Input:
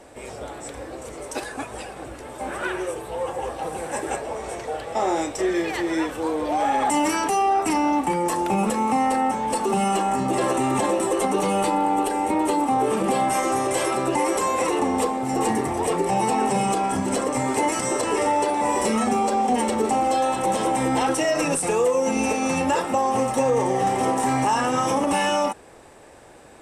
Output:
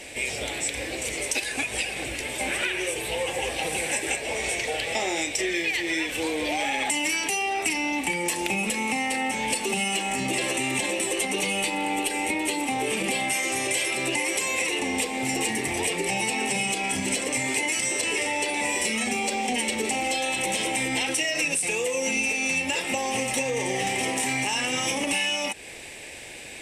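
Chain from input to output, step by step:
high shelf with overshoot 1,700 Hz +10.5 dB, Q 3
downward compressor, threshold −26 dBFS, peak gain reduction 14 dB
level +2 dB

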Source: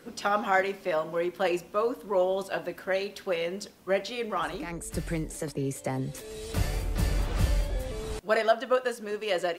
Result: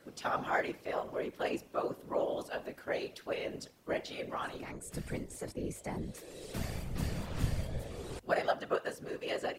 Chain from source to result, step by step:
random phases in short frames
mains-hum notches 50/100 Hz
level −7.5 dB

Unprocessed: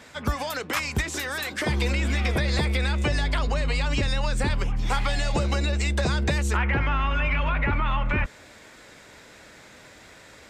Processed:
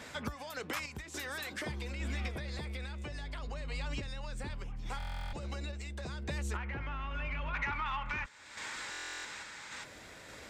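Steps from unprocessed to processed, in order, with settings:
gain on a spectral selection 0:07.54–0:09.84, 790–9,000 Hz +11 dB
downward compressor 2.5 to 1, threshold −39 dBFS, peak gain reduction 16.5 dB
soft clipping −23.5 dBFS, distortion −27 dB
sample-and-hold tremolo
buffer that repeats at 0:04.98/0:08.90, samples 1,024, times 14

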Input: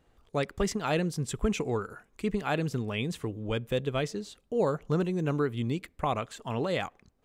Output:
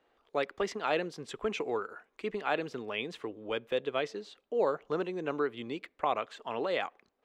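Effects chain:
three-way crossover with the lows and the highs turned down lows −23 dB, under 300 Hz, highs −18 dB, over 4,700 Hz

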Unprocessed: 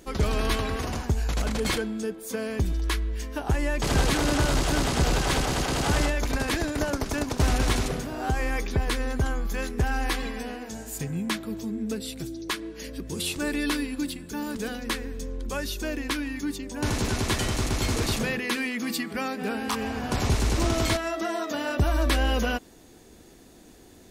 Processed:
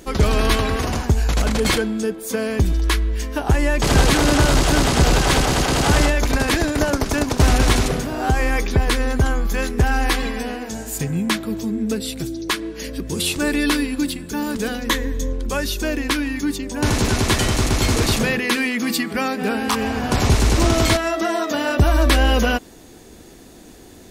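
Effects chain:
0:14.89–0:15.33: EQ curve with evenly spaced ripples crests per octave 1.1, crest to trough 8 dB
level +8 dB

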